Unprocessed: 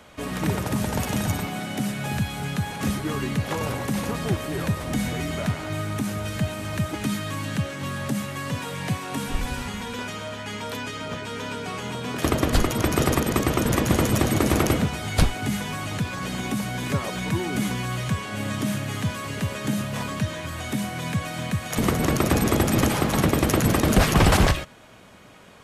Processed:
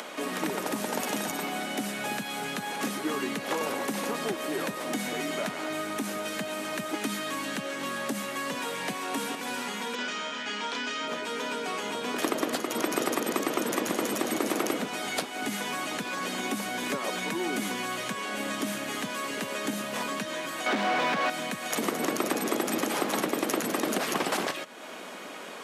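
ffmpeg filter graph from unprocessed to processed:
ffmpeg -i in.wav -filter_complex "[0:a]asettb=1/sr,asplit=3[link_01][link_02][link_03];[link_01]atrim=end=9.954[link_04];[link_02]atrim=start=9.95:end=11.08,asetpts=PTS-STARTPTS,afade=type=in:duration=0.004:curve=qsin,afade=type=out:start_time=1.126:duration=0.004:curve=qsin,lowpass=frequency=6800:width=0.5412,lowpass=frequency=6800:width=1.3066,equalizer=frequency=310:width=0.37:gain=-4,asplit=2[link_05][link_06];[link_06]adelay=33,volume=-3dB[link_07];[link_05][link_07]amix=inputs=2:normalize=0,atrim=end_sample=49833[link_08];[link_03]atrim=start=11.076[link_09];[link_04][link_08]acrossfade=duration=0.004:curve1=hsin:curve2=qsin[link_10];[link_10][link_09]acrossfade=duration=0.004:curve1=qsin:curve2=hsin,asettb=1/sr,asplit=3[link_11][link_12][link_13];[link_11]atrim=end=20.664[link_14];[link_12]atrim=start=20.66:end=21.3,asetpts=PTS-STARTPTS,afade=type=in:duration=0.004:curve=qsin,afade=type=out:start_time=0.636:duration=0.004:curve=qsin,lowpass=4700,asplit=2[link_15][link_16];[link_16]highpass=frequency=720:poles=1,volume=31dB,asoftclip=type=tanh:threshold=-14.5dB[link_17];[link_15][link_17]amix=inputs=2:normalize=0,lowpass=frequency=1400:poles=1,volume=-6dB[link_18];[link_13]atrim=start=21.296[link_19];[link_14][link_18]acrossfade=duration=0.004:curve1=hsin:curve2=qsin[link_20];[link_20][link_19]acrossfade=duration=0.004:curve1=qsin:curve2=hsin,acompressor=threshold=-22dB:ratio=6,highpass=frequency=250:width=0.5412,highpass=frequency=250:width=1.3066,acompressor=mode=upward:threshold=-31dB:ratio=2.5" out.wav

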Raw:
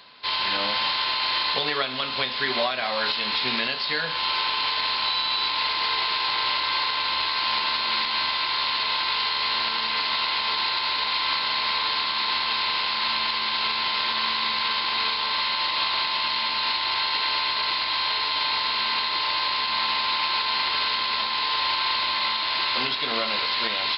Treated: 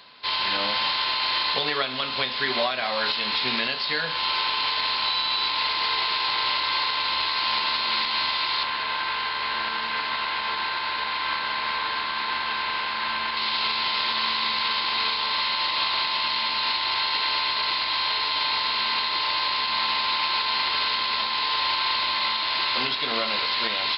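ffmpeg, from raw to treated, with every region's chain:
ffmpeg -i in.wav -filter_complex "[0:a]asettb=1/sr,asplit=3[link_01][link_02][link_03];[link_01]atrim=end=8.634[link_04];[link_02]atrim=start=8.63:end=13.37,asetpts=PTS-STARTPTS,afade=type=in:duration=0.004:curve=qsin,afade=type=out:start_time=4.736:duration=0.004:curve=qsin,acrossover=split=2800[link_05][link_06];[link_06]acompressor=threshold=-36dB:ratio=4:attack=1:release=60[link_07];[link_05][link_07]amix=inputs=2:normalize=0,equalizer=frequency=1600:width=8:gain=6[link_08];[link_03]atrim=start=13.366[link_09];[link_04][link_08]acrossfade=duration=0.004:curve1=hsin:curve2=qsin[link_10];[link_10][link_09]acrossfade=duration=0.004:curve1=qsin:curve2=hsin" out.wav

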